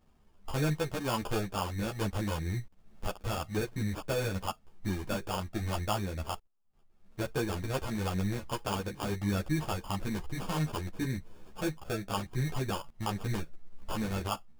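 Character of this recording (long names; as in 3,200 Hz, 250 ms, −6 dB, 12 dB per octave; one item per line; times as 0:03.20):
aliases and images of a low sample rate 2,000 Hz, jitter 0%
a shimmering, thickened sound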